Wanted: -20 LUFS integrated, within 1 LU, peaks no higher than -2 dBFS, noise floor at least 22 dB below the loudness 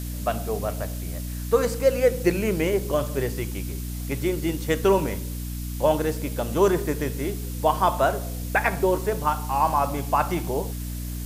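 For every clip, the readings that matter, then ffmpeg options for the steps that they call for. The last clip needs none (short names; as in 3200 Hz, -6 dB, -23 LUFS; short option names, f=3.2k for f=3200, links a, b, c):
hum 60 Hz; harmonics up to 300 Hz; hum level -29 dBFS; noise floor -32 dBFS; noise floor target -47 dBFS; loudness -25.0 LUFS; peak -7.0 dBFS; loudness target -20.0 LUFS
-> -af "bandreject=f=60:t=h:w=4,bandreject=f=120:t=h:w=4,bandreject=f=180:t=h:w=4,bandreject=f=240:t=h:w=4,bandreject=f=300:t=h:w=4"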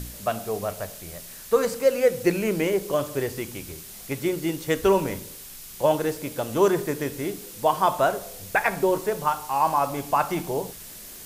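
hum none; noise floor -42 dBFS; noise floor target -47 dBFS
-> -af "afftdn=nr=6:nf=-42"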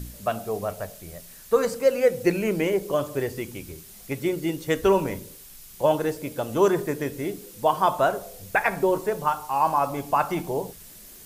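noise floor -46 dBFS; noise floor target -47 dBFS
-> -af "afftdn=nr=6:nf=-46"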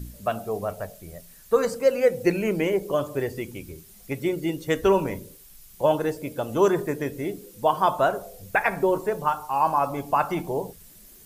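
noise floor -50 dBFS; loudness -25.0 LUFS; peak -8.0 dBFS; loudness target -20.0 LUFS
-> -af "volume=5dB"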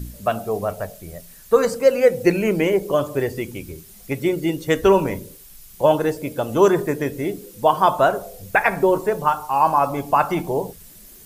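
loudness -20.0 LUFS; peak -3.0 dBFS; noise floor -45 dBFS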